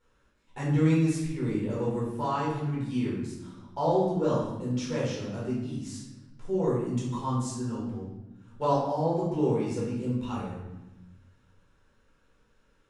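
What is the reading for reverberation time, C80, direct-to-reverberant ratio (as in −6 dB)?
1.1 s, 4.5 dB, −7.5 dB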